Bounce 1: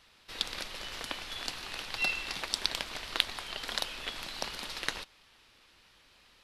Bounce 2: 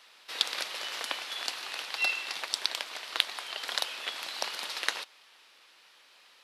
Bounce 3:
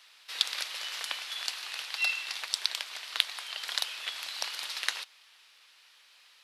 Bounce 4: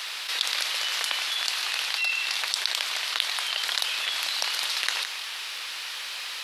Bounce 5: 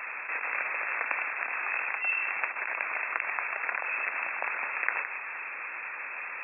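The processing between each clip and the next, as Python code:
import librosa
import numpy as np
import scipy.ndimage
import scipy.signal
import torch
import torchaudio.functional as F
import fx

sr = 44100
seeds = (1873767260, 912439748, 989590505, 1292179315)

y1 = scipy.signal.sosfilt(scipy.signal.butter(2, 500.0, 'highpass', fs=sr, output='sos'), x)
y1 = fx.rider(y1, sr, range_db=4, speed_s=2.0)
y1 = y1 * librosa.db_to_amplitude(2.0)
y2 = fx.tilt_shelf(y1, sr, db=-7.5, hz=790.0)
y2 = y2 * librosa.db_to_amplitude(-6.5)
y3 = y2 + 10.0 ** (-23.5 / 20.0) * np.pad(y2, (int(164 * sr / 1000.0), 0))[:len(y2)]
y3 = fx.env_flatten(y3, sr, amount_pct=70)
y3 = y3 * librosa.db_to_amplitude(-1.0)
y4 = fx.brickwall_lowpass(y3, sr, high_hz=2700.0)
y4 = y4 * librosa.db_to_amplitude(2.0)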